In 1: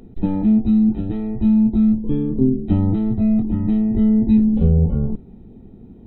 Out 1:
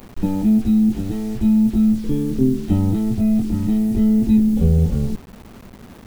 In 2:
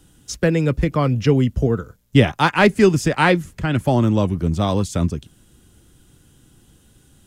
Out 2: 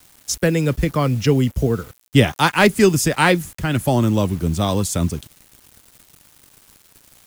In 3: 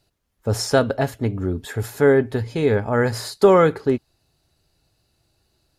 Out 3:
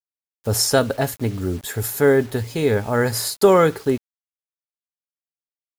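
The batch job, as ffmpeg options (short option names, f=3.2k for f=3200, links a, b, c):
-af "aemphasis=mode=production:type=50fm,acrusher=bits=6:mix=0:aa=0.000001"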